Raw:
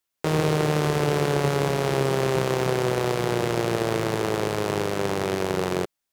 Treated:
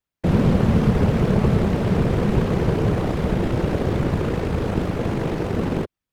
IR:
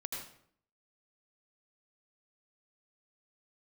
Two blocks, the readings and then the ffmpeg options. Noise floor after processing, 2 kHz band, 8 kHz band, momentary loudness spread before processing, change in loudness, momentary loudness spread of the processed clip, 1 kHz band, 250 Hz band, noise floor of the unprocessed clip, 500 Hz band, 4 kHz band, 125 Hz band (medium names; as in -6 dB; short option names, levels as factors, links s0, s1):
under -85 dBFS, -3.0 dB, no reading, 3 LU, +3.0 dB, 6 LU, -2.0 dB, +7.0 dB, -82 dBFS, -1.0 dB, -5.5 dB, +7.0 dB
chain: -af "bass=f=250:g=13,treble=f=4000:g=-8,afftfilt=real='hypot(re,im)*cos(2*PI*random(0))':imag='hypot(re,im)*sin(2*PI*random(1))':win_size=512:overlap=0.75,volume=1.5"